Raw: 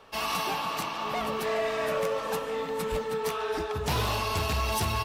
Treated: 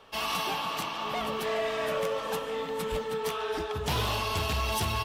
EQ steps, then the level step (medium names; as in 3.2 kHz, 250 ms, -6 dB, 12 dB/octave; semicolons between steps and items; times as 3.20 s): peaking EQ 3.2 kHz +5.5 dB 0.3 oct; -1.5 dB